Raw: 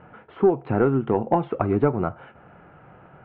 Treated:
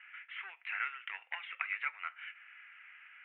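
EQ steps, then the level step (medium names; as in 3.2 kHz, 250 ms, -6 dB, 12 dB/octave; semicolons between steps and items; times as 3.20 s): Chebyshev high-pass 2 kHz, order 4; steep low-pass 2.8 kHz 36 dB/octave; +12.5 dB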